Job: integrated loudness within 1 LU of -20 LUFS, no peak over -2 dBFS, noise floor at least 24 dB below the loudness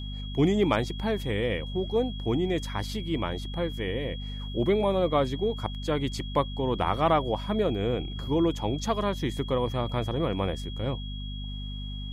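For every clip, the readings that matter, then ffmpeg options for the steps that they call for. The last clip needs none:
hum 50 Hz; harmonics up to 250 Hz; hum level -33 dBFS; steady tone 3300 Hz; tone level -42 dBFS; loudness -28.5 LUFS; peak -11.0 dBFS; loudness target -20.0 LUFS
-> -af "bandreject=f=50:t=h:w=4,bandreject=f=100:t=h:w=4,bandreject=f=150:t=h:w=4,bandreject=f=200:t=h:w=4,bandreject=f=250:t=h:w=4"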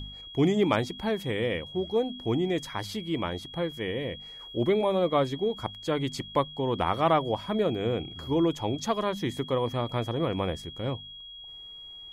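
hum none; steady tone 3300 Hz; tone level -42 dBFS
-> -af "bandreject=f=3.3k:w=30"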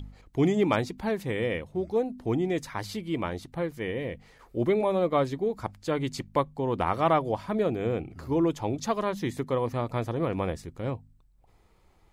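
steady tone none; loudness -29.0 LUFS; peak -11.5 dBFS; loudness target -20.0 LUFS
-> -af "volume=9dB"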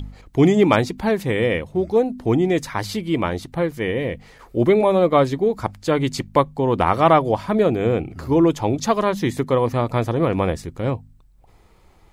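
loudness -20.0 LUFS; peak -2.5 dBFS; noise floor -52 dBFS

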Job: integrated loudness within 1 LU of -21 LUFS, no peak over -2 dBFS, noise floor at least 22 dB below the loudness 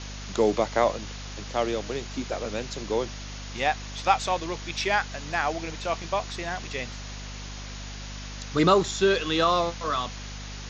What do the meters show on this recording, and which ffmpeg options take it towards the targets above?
hum 50 Hz; harmonics up to 250 Hz; hum level -37 dBFS; noise floor -38 dBFS; noise floor target -49 dBFS; loudness -27.0 LUFS; peak -6.5 dBFS; loudness target -21.0 LUFS
-> -af "bandreject=f=50:t=h:w=6,bandreject=f=100:t=h:w=6,bandreject=f=150:t=h:w=6,bandreject=f=200:t=h:w=6,bandreject=f=250:t=h:w=6"
-af "afftdn=nr=11:nf=-38"
-af "volume=6dB,alimiter=limit=-2dB:level=0:latency=1"

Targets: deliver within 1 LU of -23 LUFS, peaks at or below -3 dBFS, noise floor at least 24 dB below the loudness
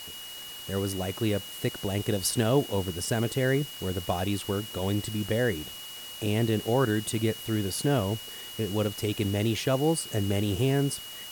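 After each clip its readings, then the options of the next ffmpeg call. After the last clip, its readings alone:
steady tone 2900 Hz; tone level -41 dBFS; noise floor -41 dBFS; noise floor target -53 dBFS; loudness -28.5 LUFS; peak -12.5 dBFS; loudness target -23.0 LUFS
-> -af "bandreject=f=2.9k:w=30"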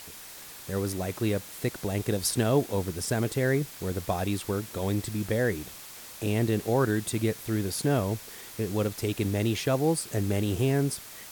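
steady tone none; noise floor -45 dBFS; noise floor target -53 dBFS
-> -af "afftdn=nr=8:nf=-45"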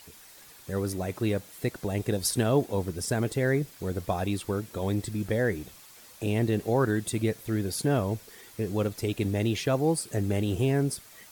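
noise floor -51 dBFS; noise floor target -53 dBFS
-> -af "afftdn=nr=6:nf=-51"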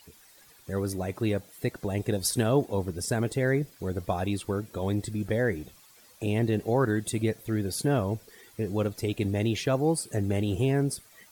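noise floor -56 dBFS; loudness -29.0 LUFS; peak -13.0 dBFS; loudness target -23.0 LUFS
-> -af "volume=6dB"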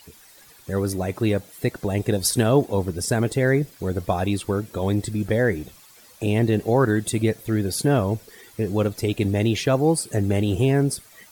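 loudness -23.0 LUFS; peak -7.0 dBFS; noise floor -50 dBFS

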